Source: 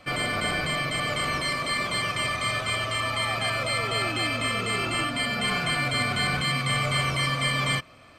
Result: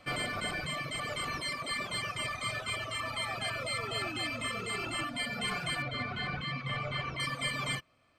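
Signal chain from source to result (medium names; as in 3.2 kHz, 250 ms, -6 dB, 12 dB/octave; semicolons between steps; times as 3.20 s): reverb removal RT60 1.8 s; 5.82–7.20 s: distance through air 200 m; trim -5.5 dB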